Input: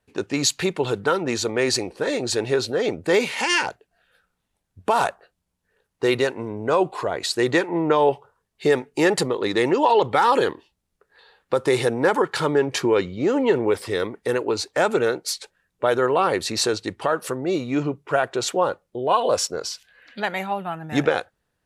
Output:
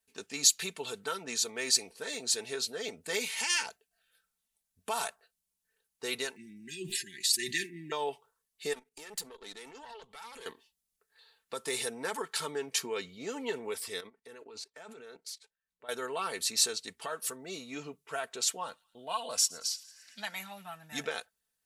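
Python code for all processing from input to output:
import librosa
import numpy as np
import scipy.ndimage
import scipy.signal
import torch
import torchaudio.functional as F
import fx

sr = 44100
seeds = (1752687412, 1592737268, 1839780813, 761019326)

y = fx.chain(x, sr, fx.brickwall_bandstop(low_hz=390.0, high_hz=1600.0),
    fx.comb(ms=5.6, depth=0.52),
    fx.sustainer(db_per_s=84.0), at=(6.36, 7.92))
y = fx.chain(y, sr, fx.level_steps(step_db=14),
    fx.tube_stage(drive_db=22.0, bias=0.7), at=(8.73, 10.46))
y = fx.chain(y, sr, fx.level_steps(step_db=16),
    fx.lowpass(hz=2500.0, slope=6), at=(14.0, 15.89))
y = fx.chain(y, sr, fx.peak_eq(hz=420.0, db=-15.0, octaves=0.28),
    fx.echo_wet_highpass(ms=114, feedback_pct=70, hz=2600.0, wet_db=-21.5), at=(18.56, 20.99))
y = librosa.effects.preemphasis(y, coef=0.9, zi=[0.0])
y = y + 0.58 * np.pad(y, (int(4.5 * sr / 1000.0), 0))[:len(y)]
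y = y * 10.0 ** (-1.0 / 20.0)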